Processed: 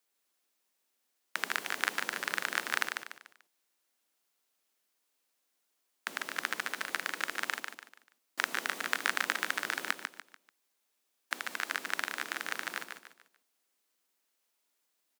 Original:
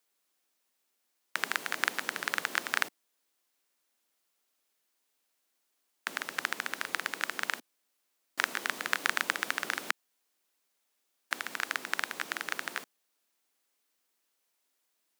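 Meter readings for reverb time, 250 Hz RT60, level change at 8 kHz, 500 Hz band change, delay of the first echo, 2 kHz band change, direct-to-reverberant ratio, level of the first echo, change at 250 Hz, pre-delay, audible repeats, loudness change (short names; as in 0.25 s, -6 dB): none, none, -1.0 dB, -1.0 dB, 0.146 s, -1.0 dB, none, -6.0 dB, -1.0 dB, none, 4, -1.0 dB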